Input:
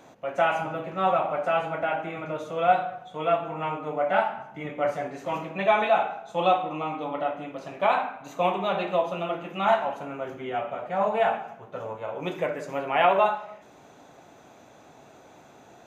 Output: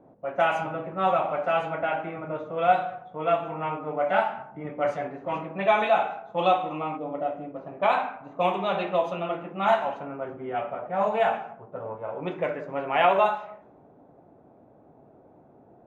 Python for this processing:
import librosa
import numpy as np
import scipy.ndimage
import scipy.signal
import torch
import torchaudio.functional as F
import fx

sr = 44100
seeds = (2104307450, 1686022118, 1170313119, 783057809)

y = fx.env_lowpass(x, sr, base_hz=540.0, full_db=-19.5)
y = fx.spec_box(y, sr, start_s=6.97, length_s=0.58, low_hz=740.0, high_hz=4700.0, gain_db=-8)